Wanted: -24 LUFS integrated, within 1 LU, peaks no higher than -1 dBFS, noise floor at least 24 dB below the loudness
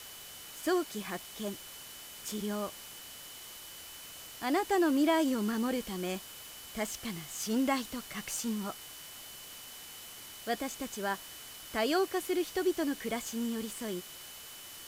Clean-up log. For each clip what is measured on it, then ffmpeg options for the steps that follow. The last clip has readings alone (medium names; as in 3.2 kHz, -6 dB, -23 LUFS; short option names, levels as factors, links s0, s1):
steady tone 3 kHz; tone level -53 dBFS; noise floor -48 dBFS; noise floor target -59 dBFS; loudness -35.0 LUFS; peak level -16.0 dBFS; loudness target -24.0 LUFS
-> -af "bandreject=f=3000:w=30"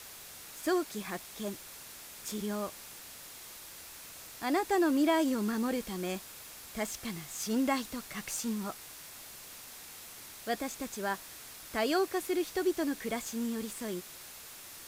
steady tone not found; noise floor -49 dBFS; noise floor target -58 dBFS
-> -af "afftdn=nr=9:nf=-49"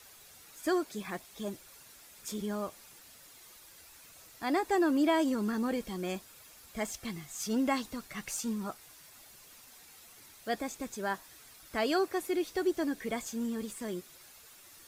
noise floor -56 dBFS; noise floor target -58 dBFS
-> -af "afftdn=nr=6:nf=-56"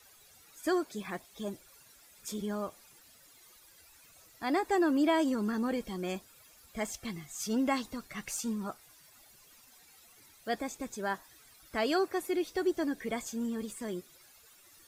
noise floor -60 dBFS; loudness -34.0 LUFS; peak level -16.5 dBFS; loudness target -24.0 LUFS
-> -af "volume=3.16"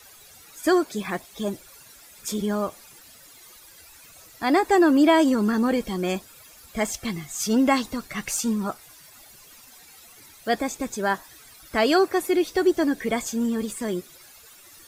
loudness -24.0 LUFS; peak level -6.5 dBFS; noise floor -50 dBFS